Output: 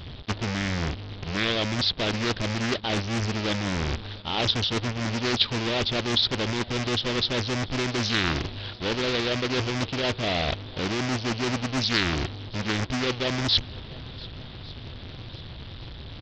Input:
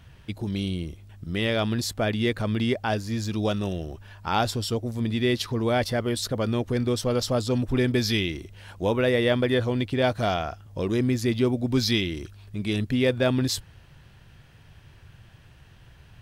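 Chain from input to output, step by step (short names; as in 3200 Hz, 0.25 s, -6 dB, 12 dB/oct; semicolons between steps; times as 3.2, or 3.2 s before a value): half-waves squared off; reverse; compressor 20:1, threshold -30 dBFS, peak gain reduction 16.5 dB; reverse; bell 3600 Hz +14.5 dB 0.54 oct; bit-crush 8-bit; downsampling 11025 Hz; on a send: swung echo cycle 1.15 s, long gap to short 1.5:1, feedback 47%, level -21.5 dB; on the sum: Doppler distortion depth 0.72 ms; gain +4.5 dB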